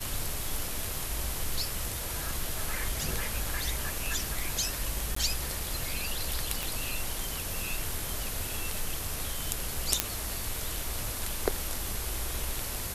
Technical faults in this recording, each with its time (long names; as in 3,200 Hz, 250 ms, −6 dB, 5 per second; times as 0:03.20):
0:05.15–0:05.16: drop-out 14 ms
0:06.63: click
0:10.00: click −3 dBFS